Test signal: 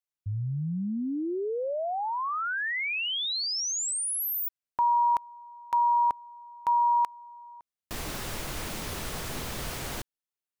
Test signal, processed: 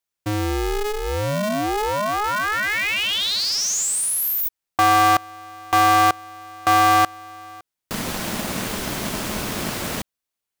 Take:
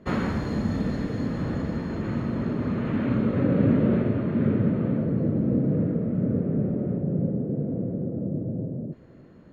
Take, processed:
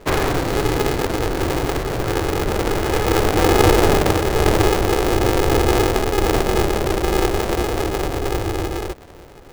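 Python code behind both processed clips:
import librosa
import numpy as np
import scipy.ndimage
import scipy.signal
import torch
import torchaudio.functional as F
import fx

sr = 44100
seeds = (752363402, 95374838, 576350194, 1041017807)

y = fx.dynamic_eq(x, sr, hz=240.0, q=5.4, threshold_db=-41.0, ratio=4.0, max_db=-4)
y = y * np.sign(np.sin(2.0 * np.pi * 210.0 * np.arange(len(y)) / sr))
y = y * librosa.db_to_amplitude(8.0)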